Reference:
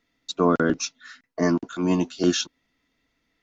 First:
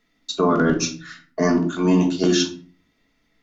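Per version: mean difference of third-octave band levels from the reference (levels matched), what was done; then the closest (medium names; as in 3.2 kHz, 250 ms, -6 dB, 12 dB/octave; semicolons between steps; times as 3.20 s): 4.5 dB: simulated room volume 320 m³, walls furnished, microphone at 1.4 m; loudness maximiser +10.5 dB; trim -7.5 dB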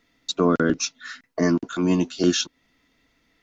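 1.5 dB: dynamic bell 830 Hz, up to -6 dB, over -37 dBFS, Q 1.5; in parallel at +2 dB: compression, threshold -34 dBFS, peak gain reduction 17.5 dB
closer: second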